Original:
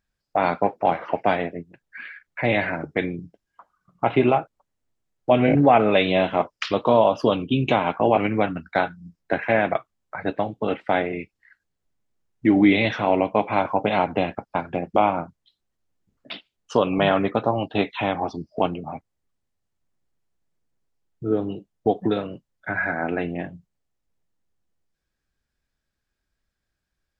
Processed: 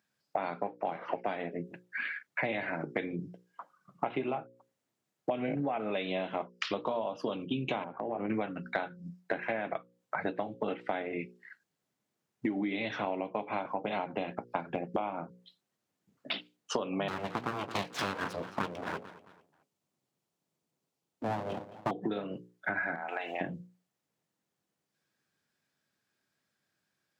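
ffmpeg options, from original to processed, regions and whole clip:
-filter_complex "[0:a]asettb=1/sr,asplit=3[a][b][c];[a]atrim=end=7.844[d];[b]atrim=start=7.84:end=8.3,asetpts=PTS-STARTPTS,afade=t=in:d=0.004:c=qsin,afade=t=out:st=0.456:d=0.004:c=qsin,lowpass=1.1k,acompressor=threshold=-29dB:ratio=6:attack=3.2:release=140:knee=1:detection=peak[e];[c]atrim=start=8.296[f];[d][e]acrossfade=d=0.004:c1=hsin:c2=qsin[g];[g][f]acrossfade=d=0.004:c1=qsin:c2=hsin,asettb=1/sr,asplit=3[h][i][j];[h]atrim=end=17.084[k];[i]atrim=start=17.08:end=21.91,asetpts=PTS-STARTPTS,afade=t=in:d=0.004:c=qsin,afade=t=out:st=4.826:d=0.004:c=qsin,equalizer=f=1.7k:w=2:g=-6,aecho=1:1:220|440|660:0.112|0.0415|0.0154,atrim=end_sample=213003,aeval=exprs='abs(val(0))':c=same[l];[j]atrim=start=21.906[m];[k][l]acrossfade=d=0.004:c1=hsin:c2=qsin[n];[n][m]acrossfade=d=0.004:c1=qsin:c2=hsin,asettb=1/sr,asplit=3[o][p][q];[o]atrim=end=22.954[r];[p]atrim=start=22.95:end=23.41,asetpts=PTS-STARTPTS,afade=t=in:d=0.004:c=qsin,afade=t=out:st=0.456:d=0.004:c=qsin,highpass=f=820:t=q:w=2.5,highshelf=f=3.1k:g=10.5,acompressor=threshold=-33dB:ratio=5:attack=3.2:release=140:knee=1:detection=peak[s];[q]atrim=start=23.406[t];[r][s]acrossfade=d=0.004:c1=hsin:c2=qsin[u];[u][t]acrossfade=d=0.004:c1=qsin:c2=hsin,highpass=f=130:w=0.5412,highpass=f=130:w=1.3066,bandreject=f=60:t=h:w=6,bandreject=f=120:t=h:w=6,bandreject=f=180:t=h:w=6,bandreject=f=240:t=h:w=6,bandreject=f=300:t=h:w=6,bandreject=f=360:t=h:w=6,bandreject=f=420:t=h:w=6,bandreject=f=480:t=h:w=6,bandreject=f=540:t=h:w=6,acompressor=threshold=-32dB:ratio=16,volume=2.5dB"

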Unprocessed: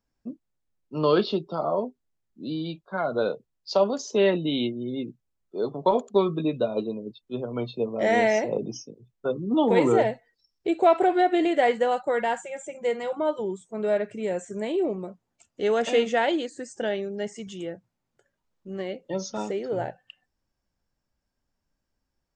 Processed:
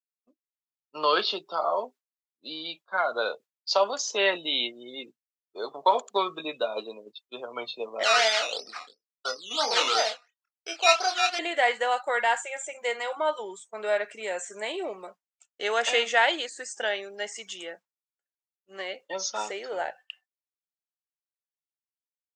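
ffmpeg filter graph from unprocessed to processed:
-filter_complex "[0:a]asettb=1/sr,asplit=3[a][b][c];[a]atrim=end=8.034[d];[b]atrim=start=8.03:end=11.39,asetpts=PTS-STARTPTS,afade=t=in:d=0.004:c=qsin,afade=t=out:st=3.356:d=0.004:c=qsin,acrusher=samples=11:mix=1:aa=0.000001:lfo=1:lforange=6.6:lforate=2.9,highpass=360,equalizer=f=360:t=q:w=4:g=-9,equalizer=f=550:t=q:w=4:g=-5,equalizer=f=940:t=q:w=4:g=-7,equalizer=f=1.3k:t=q:w=4:g=6,equalizer=f=1.9k:t=q:w=4:g=-7,lowpass=f=5.8k:w=0.5412,lowpass=f=5.8k:w=1.3066,asplit=2[e][f];[f]adelay=27,volume=-6dB[g];[e][g]amix=inputs=2:normalize=0,atrim=end_sample=148176[h];[c]atrim=start=11.386[i];[d][h]acrossfade=d=0.004:c1=hsin:c2=qsin[j];[j][i]acrossfade=d=0.004:c1=qsin:c2=hsin,highpass=980,agate=range=-33dB:threshold=-50dB:ratio=3:detection=peak,dynaudnorm=f=110:g=13:m=10.5dB,volume=-3.5dB"

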